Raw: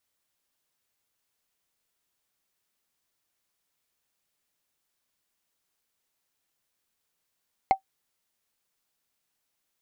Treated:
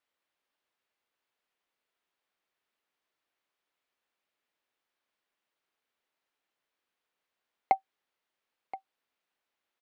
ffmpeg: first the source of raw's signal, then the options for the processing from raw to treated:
-f lavfi -i "aevalsrc='0.282*pow(10,-3*t/0.1)*sin(2*PI*772*t)+0.0794*pow(10,-3*t/0.03)*sin(2*PI*2128.4*t)+0.0224*pow(10,-3*t/0.013)*sin(2*PI*4171.9*t)+0.00631*pow(10,-3*t/0.007)*sin(2*PI*6896.3*t)+0.00178*pow(10,-3*t/0.004)*sin(2*PI*10298.5*t)':d=0.45:s=44100"
-filter_complex "[0:a]acrossover=split=250 3700:gain=0.224 1 0.158[a][b][c];[a][b][c]amix=inputs=3:normalize=0,aecho=1:1:1025:0.158"

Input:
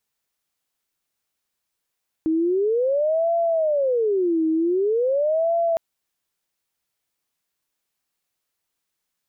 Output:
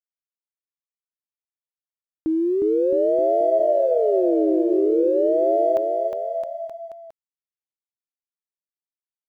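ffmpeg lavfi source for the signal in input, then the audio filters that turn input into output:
-f lavfi -i "aevalsrc='0.133*sin(2*PI*(497.5*t-179.5/(2*PI*0.45)*sin(2*PI*0.45*t)))':d=3.51:s=44100"
-af "aeval=exprs='sgn(val(0))*max(abs(val(0))-0.00133,0)':c=same,aecho=1:1:360|666|926.1|1147|1335:0.631|0.398|0.251|0.158|0.1"

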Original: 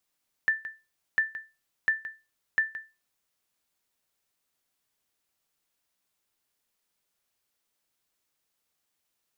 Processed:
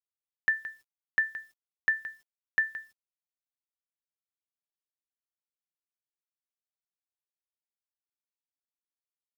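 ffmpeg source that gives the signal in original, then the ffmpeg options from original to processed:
-f lavfi -i "aevalsrc='0.158*(sin(2*PI*1770*mod(t,0.7))*exp(-6.91*mod(t,0.7)/0.27)+0.2*sin(2*PI*1770*max(mod(t,0.7)-0.17,0))*exp(-6.91*max(mod(t,0.7)-0.17,0)/0.27))':d=2.8:s=44100"
-af "acrusher=bits=10:mix=0:aa=0.000001"

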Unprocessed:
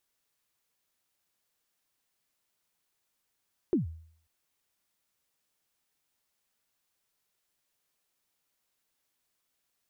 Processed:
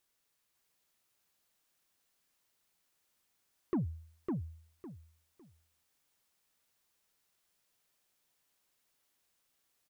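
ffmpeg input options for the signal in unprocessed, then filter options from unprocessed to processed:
-f lavfi -i "aevalsrc='0.1*pow(10,-3*t/0.58)*sin(2*PI*(400*0.133/log(81/400)*(exp(log(81/400)*min(t,0.133)/0.133)-1)+81*max(t-0.133,0)))':d=0.54:s=44100"
-filter_complex "[0:a]asoftclip=type=tanh:threshold=-27.5dB,asplit=2[a][b];[b]aecho=0:1:555|1110|1665:0.708|0.163|0.0375[c];[a][c]amix=inputs=2:normalize=0"

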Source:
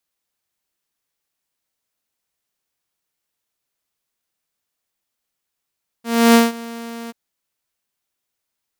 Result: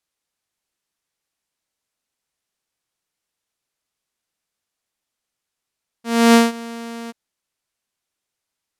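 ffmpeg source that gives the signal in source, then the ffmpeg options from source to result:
-f lavfi -i "aevalsrc='0.596*(2*mod(232*t,1)-1)':d=1.085:s=44100,afade=t=in:d=0.302,afade=t=out:st=0.302:d=0.176:silence=0.0794,afade=t=out:st=1.06:d=0.025"
-af "lowpass=11k"

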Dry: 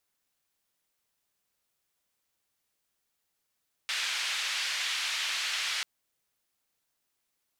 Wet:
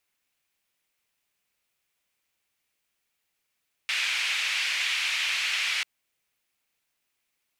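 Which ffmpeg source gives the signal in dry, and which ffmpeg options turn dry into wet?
-f lavfi -i "anoisesrc=c=white:d=1.94:r=44100:seed=1,highpass=f=1900,lowpass=f=3600,volume=-16.7dB"
-af "equalizer=f=2.4k:w=1.8:g=8"

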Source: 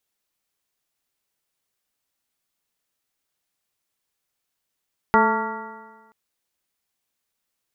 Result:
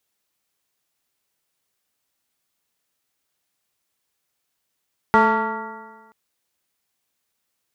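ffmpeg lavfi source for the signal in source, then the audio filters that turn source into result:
-f lavfi -i "aevalsrc='0.1*pow(10,-3*t/1.37)*sin(2*PI*217.42*t)+0.106*pow(10,-3*t/1.37)*sin(2*PI*437.37*t)+0.0531*pow(10,-3*t/1.37)*sin(2*PI*662.33*t)+0.188*pow(10,-3*t/1.37)*sin(2*PI*894.67*t)+0.0891*pow(10,-3*t/1.37)*sin(2*PI*1136.66*t)+0.126*pow(10,-3*t/1.37)*sin(2*PI*1390.4*t)+0.0168*pow(10,-3*t/1.37)*sin(2*PI*1657.8*t)+0.0562*pow(10,-3*t/1.37)*sin(2*PI*1940.6*t)':d=0.98:s=44100"
-filter_complex "[0:a]highpass=47,asplit=2[a][b];[b]asoftclip=type=tanh:threshold=-21.5dB,volume=-6dB[c];[a][c]amix=inputs=2:normalize=0"

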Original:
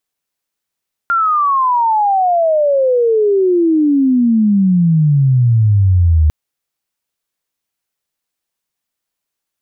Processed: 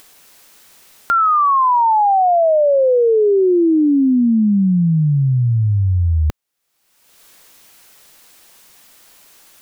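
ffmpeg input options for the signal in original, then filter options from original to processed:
-f lavfi -i "aevalsrc='pow(10,(-10.5+3.5*t/5.2)/20)*sin(2*PI*1400*5.2/log(75/1400)*(exp(log(75/1400)*t/5.2)-1))':d=5.2:s=44100"
-af "equalizer=f=87:t=o:w=2.4:g=-4.5,acompressor=mode=upward:threshold=-22dB:ratio=2.5"

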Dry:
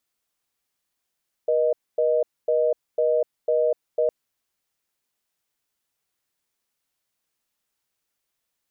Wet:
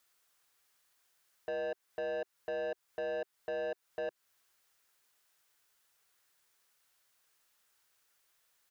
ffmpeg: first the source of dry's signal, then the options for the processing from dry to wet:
-f lavfi -i "aevalsrc='0.0944*(sin(2*PI*480*t)+sin(2*PI*620*t))*clip(min(mod(t,0.5),0.25-mod(t,0.5))/0.005,0,1)':d=2.61:s=44100"
-af "firequalizer=gain_entry='entry(130,0);entry(220,-5);entry(390,3);entry(700,4);entry(1500,10);entry(2200,6)':delay=0.05:min_phase=1,alimiter=limit=-22dB:level=0:latency=1:release=229,asoftclip=type=tanh:threshold=-33.5dB"

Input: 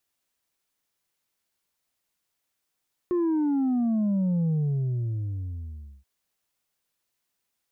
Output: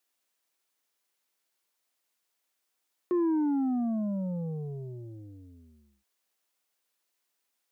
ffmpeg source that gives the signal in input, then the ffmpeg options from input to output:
-f lavfi -i "aevalsrc='0.0794*clip((2.93-t)/1.55,0,1)*tanh(1.41*sin(2*PI*360*2.93/log(65/360)*(exp(log(65/360)*t/2.93)-1)))/tanh(1.41)':d=2.93:s=44100"
-af "highpass=280"

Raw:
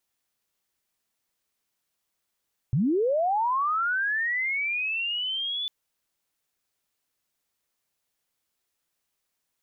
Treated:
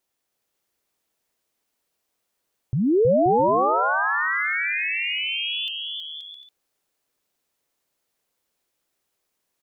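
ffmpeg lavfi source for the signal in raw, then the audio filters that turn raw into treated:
-f lavfi -i "aevalsrc='pow(10,(-20-7.5*t/2.95)/20)*sin(2*PI*(110*t+3390*t*t/(2*2.95)))':d=2.95:s=44100"
-filter_complex "[0:a]equalizer=f=460:w=0.79:g=6.5,asplit=2[a][b];[b]aecho=0:1:320|528|663.2|751.1|808.2:0.631|0.398|0.251|0.158|0.1[c];[a][c]amix=inputs=2:normalize=0"

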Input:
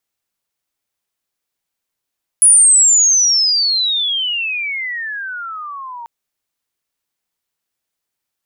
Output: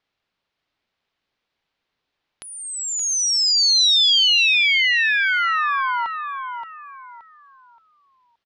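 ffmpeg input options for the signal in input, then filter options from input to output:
-f lavfi -i "aevalsrc='pow(10,(-4.5-23*t/3.64)/20)*sin(2*PI*10000*3.64/log(920/10000)*(exp(log(920/10000)*t/3.64)-1))':d=3.64:s=44100"
-filter_complex "[0:a]lowpass=f=4.2k:w=0.5412,lowpass=f=4.2k:w=1.3066,asplit=2[a][b];[b]alimiter=level_in=1dB:limit=-24dB:level=0:latency=1:release=322,volume=-1dB,volume=0.5dB[c];[a][c]amix=inputs=2:normalize=0,aecho=1:1:574|1148|1722|2296:0.447|0.134|0.0402|0.0121"

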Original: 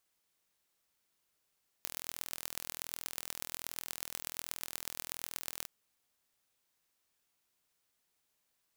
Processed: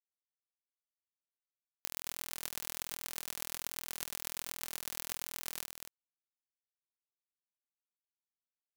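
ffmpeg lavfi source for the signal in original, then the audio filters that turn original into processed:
-f lavfi -i "aevalsrc='0.355*eq(mod(n,1068),0)*(0.5+0.5*eq(mod(n,5340),0))':d=3.82:s=44100"
-filter_complex "[0:a]acrusher=bits=5:mix=0:aa=0.000001,asplit=2[a][b];[b]aecho=0:1:223:0.447[c];[a][c]amix=inputs=2:normalize=0"

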